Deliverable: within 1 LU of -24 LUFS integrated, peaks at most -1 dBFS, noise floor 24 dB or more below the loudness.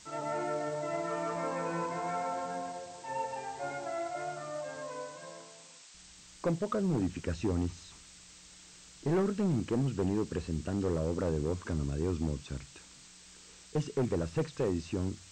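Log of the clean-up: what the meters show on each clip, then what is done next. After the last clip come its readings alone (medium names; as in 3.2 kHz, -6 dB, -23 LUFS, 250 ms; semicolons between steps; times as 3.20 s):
clipped samples 1.7%; clipping level -24.5 dBFS; noise floor -55 dBFS; noise floor target -59 dBFS; loudness -34.5 LUFS; peak level -24.5 dBFS; loudness target -24.0 LUFS
-> clip repair -24.5 dBFS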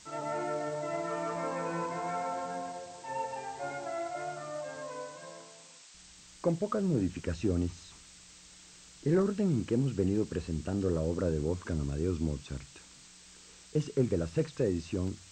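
clipped samples 0.0%; noise floor -55 dBFS; noise floor target -58 dBFS
-> noise print and reduce 6 dB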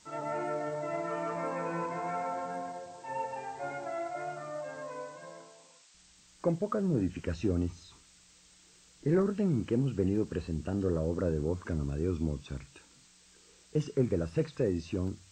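noise floor -61 dBFS; loudness -33.5 LUFS; peak level -15.5 dBFS; loudness target -24.0 LUFS
-> trim +9.5 dB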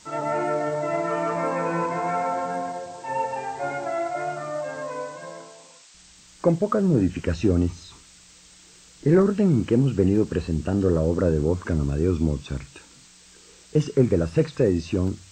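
loudness -24.0 LUFS; peak level -6.0 dBFS; noise floor -51 dBFS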